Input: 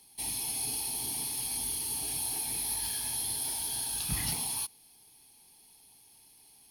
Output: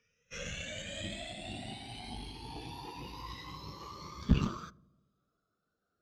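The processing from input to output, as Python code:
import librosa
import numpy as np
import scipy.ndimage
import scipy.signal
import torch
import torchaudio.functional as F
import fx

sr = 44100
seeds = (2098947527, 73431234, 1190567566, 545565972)

y = fx.speed_glide(x, sr, from_pct=55, to_pct=168)
y = scipy.signal.sosfilt(scipy.signal.butter(2, 3000.0, 'lowpass', fs=sr, output='sos'), y)
y = fx.echo_filtered(y, sr, ms=79, feedback_pct=75, hz=1200.0, wet_db=-15.5)
y = fx.cheby_harmonics(y, sr, harmonics=(4,), levels_db=(-12,), full_scale_db=-23.5)
y = fx.spectral_expand(y, sr, expansion=1.5)
y = F.gain(torch.from_numpy(y), 9.5).numpy()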